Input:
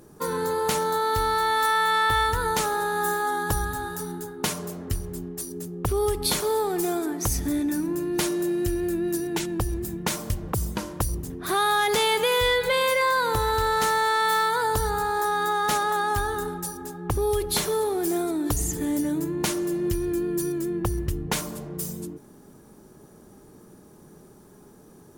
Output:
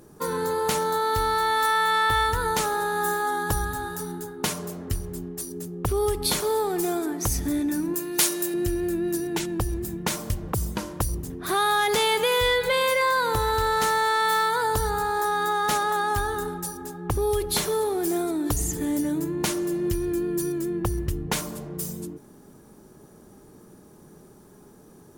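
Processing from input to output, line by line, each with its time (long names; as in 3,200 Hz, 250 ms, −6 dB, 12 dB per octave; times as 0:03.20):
0:07.94–0:08.54: spectral tilt +3 dB per octave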